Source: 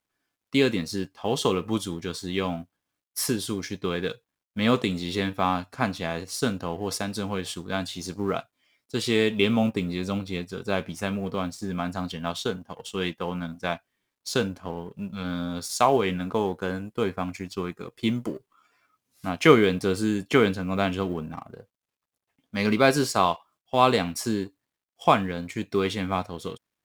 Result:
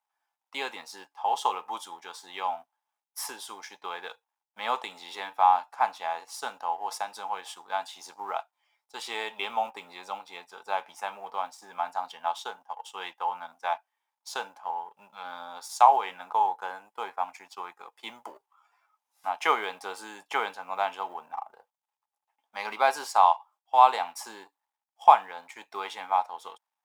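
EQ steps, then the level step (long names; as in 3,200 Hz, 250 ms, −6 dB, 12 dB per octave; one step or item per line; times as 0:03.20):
high-pass with resonance 850 Hz, resonance Q 9.3
notch filter 4,300 Hz, Q 14
−7.5 dB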